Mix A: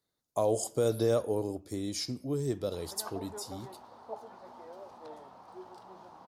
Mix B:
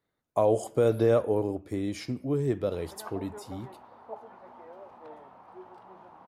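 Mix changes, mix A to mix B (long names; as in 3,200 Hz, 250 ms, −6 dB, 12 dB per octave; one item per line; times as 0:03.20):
speech +4.5 dB
master: add high shelf with overshoot 3,400 Hz −11 dB, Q 1.5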